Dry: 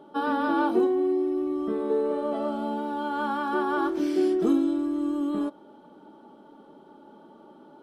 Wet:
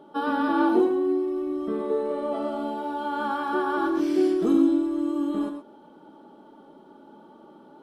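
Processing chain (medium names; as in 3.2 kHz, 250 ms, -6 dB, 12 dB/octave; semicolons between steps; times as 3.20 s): gated-style reverb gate 140 ms rising, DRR 6 dB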